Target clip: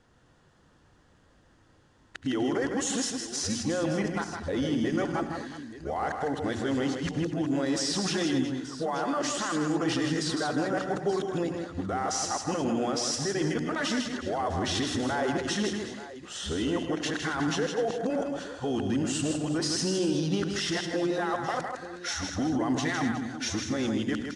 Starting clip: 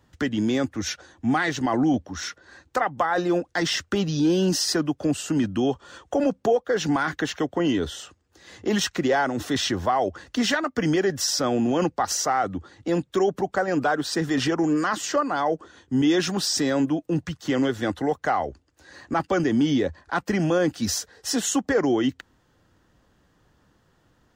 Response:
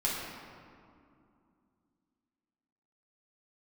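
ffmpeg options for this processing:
-filter_complex "[0:a]areverse,bandreject=frequency=60:width_type=h:width=6,bandreject=frequency=120:width_type=h:width=6,bandreject=frequency=180:width_type=h:width=6,bandreject=frequency=240:width_type=h:width=6,bandreject=frequency=300:width_type=h:width=6,bandreject=frequency=360:width_type=h:width=6,alimiter=limit=-22dB:level=0:latency=1:release=59,asplit=2[link_01][link_02];[link_02]aecho=0:1:72|104|158|246|365|880:0.133|0.2|0.531|0.178|0.178|0.188[link_03];[link_01][link_03]amix=inputs=2:normalize=0" -ar 22050 -c:a adpcm_ima_wav

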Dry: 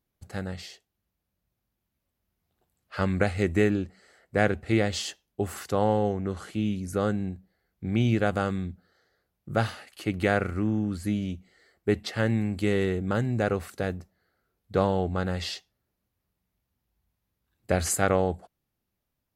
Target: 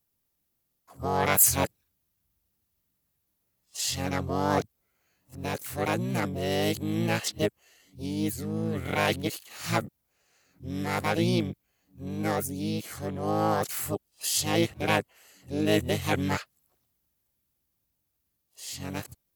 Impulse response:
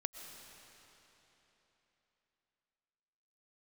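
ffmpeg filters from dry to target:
-filter_complex "[0:a]areverse,asplit=2[link_01][link_02];[link_02]asetrate=66075,aresample=44100,atempo=0.66742,volume=-1dB[link_03];[link_01][link_03]amix=inputs=2:normalize=0,crystalizer=i=2.5:c=0,volume=-5dB"

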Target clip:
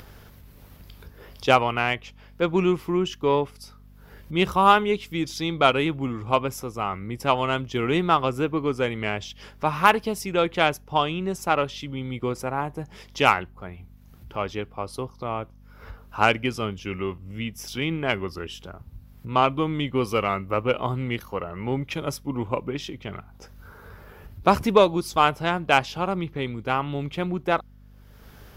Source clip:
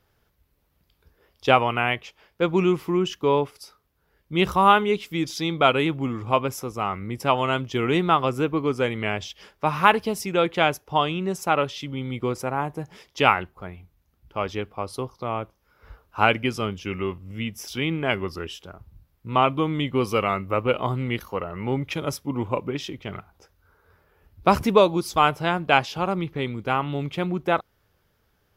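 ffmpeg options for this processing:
ffmpeg -i in.wav -af "acompressor=mode=upward:threshold=-31dB:ratio=2.5,aeval=exprs='val(0)+0.00447*(sin(2*PI*50*n/s)+sin(2*PI*2*50*n/s)/2+sin(2*PI*3*50*n/s)/3+sin(2*PI*4*50*n/s)/4+sin(2*PI*5*50*n/s)/5)':channel_layout=same,aeval=exprs='0.891*(cos(1*acos(clip(val(0)/0.891,-1,1)))-cos(1*PI/2))+0.0447*(cos(4*acos(clip(val(0)/0.891,-1,1)))-cos(4*PI/2))+0.0708*(cos(6*acos(clip(val(0)/0.891,-1,1)))-cos(6*PI/2))+0.0178*(cos(7*acos(clip(val(0)/0.891,-1,1)))-cos(7*PI/2))+0.0355*(cos(8*acos(clip(val(0)/0.891,-1,1)))-cos(8*PI/2))':channel_layout=same" out.wav

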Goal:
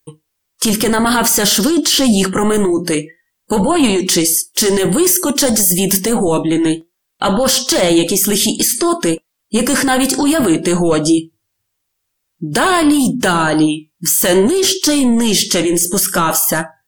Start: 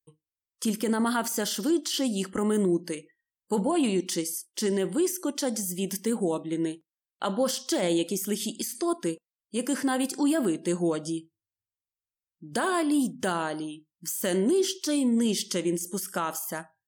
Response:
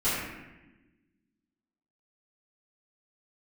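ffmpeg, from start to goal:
-filter_complex "[0:a]asettb=1/sr,asplit=3[link_01][link_02][link_03];[link_01]atrim=end=4.474[link_04];[link_02]atrim=start=4.47:end=6,asetpts=PTS-STARTPTS,afade=type=in:duration=0.004:curve=qsin,afade=type=out:start_time=1.526:duration=0.004:curve=qsin,highshelf=frequency=9800:gain=10.5[link_05];[link_03]atrim=start=5.996[link_06];[link_04][link_05]acrossfade=duration=0.004:curve1=hsin:curve2=qsin[link_07];[link_07][link_06]acrossfade=duration=0.004:curve1=qsin:curve2=hsin,apsyclip=31dB,flanger=delay=3:depth=4.9:regen=78:speed=0.54:shape=triangular,volume=-4.5dB"

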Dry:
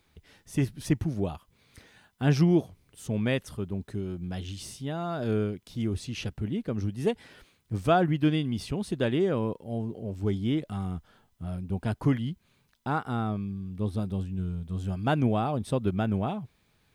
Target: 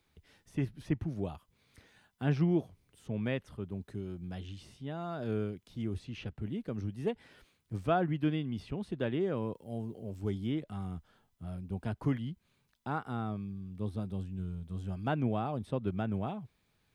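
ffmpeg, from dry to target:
ffmpeg -i in.wav -filter_complex "[0:a]asettb=1/sr,asplit=3[link_01][link_02][link_03];[link_01]atrim=end=9.554[link_04];[link_02]atrim=start=9.55:end=10.63,asetpts=PTS-STARTPTS,afade=type=in:duration=0.004:curve=qsin,afade=type=out:start_time=1.076:duration=0.004:curve=qsin,highshelf=frequency=6300:gain=7.5[link_05];[link_03]atrim=start=10.626[link_06];[link_04][link_05]acrossfade=duration=0.004:curve1=hsin:curve2=qsin[link_07];[link_07][link_06]acrossfade=duration=0.004:curve1=qsin:curve2=hsin,acrossover=split=110|3500[link_08][link_09][link_10];[link_10]acompressor=threshold=-58dB:ratio=6[link_11];[link_08][link_09][link_11]amix=inputs=3:normalize=0,volume=-6.5dB" out.wav

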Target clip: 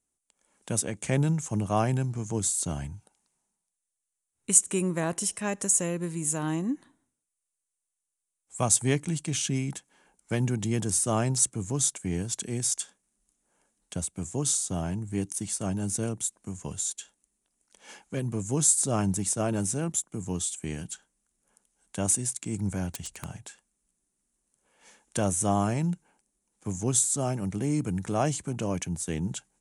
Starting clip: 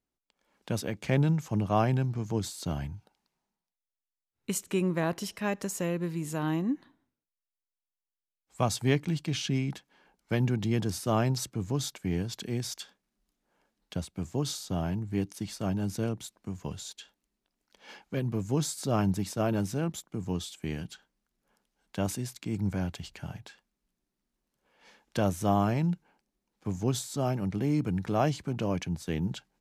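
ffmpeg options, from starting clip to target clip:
ffmpeg -i in.wav -filter_complex "[0:a]aresample=22050,aresample=44100,aexciter=amount=9.8:drive=3.6:freq=6700,asettb=1/sr,asplit=3[link_01][link_02][link_03];[link_01]atrim=end=22.914[link_04];[link_02]atrim=start=22.91:end=23.37,asetpts=PTS-STARTPTS,afade=type=in:duration=0.004:curve=qsin,afade=type=out:start_time=0.456:duration=0.004:curve=qsin,aeval=exprs='(mod(23.7*val(0)+1,2)-1)/23.7':channel_layout=same[link_05];[link_03]atrim=start=23.366[link_06];[link_04][link_05]acrossfade=duration=0.004:curve1=hsin:curve2=qsin[link_07];[link_07][link_06]acrossfade=duration=0.004:curve1=qsin:curve2=hsin" out.wav

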